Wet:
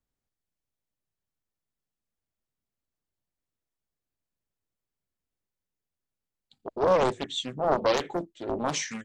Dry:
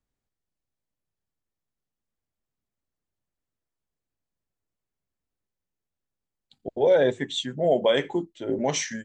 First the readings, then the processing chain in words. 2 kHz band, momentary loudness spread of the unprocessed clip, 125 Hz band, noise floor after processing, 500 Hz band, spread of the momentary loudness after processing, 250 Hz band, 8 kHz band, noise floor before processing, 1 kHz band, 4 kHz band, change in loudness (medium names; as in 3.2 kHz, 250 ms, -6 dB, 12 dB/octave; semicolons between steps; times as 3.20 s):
-3.5 dB, 11 LU, -3.0 dB, under -85 dBFS, -4.5 dB, 11 LU, -4.0 dB, no reading, under -85 dBFS, +4.0 dB, -3.0 dB, -3.0 dB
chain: loudspeaker Doppler distortion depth 0.81 ms; trim -2.5 dB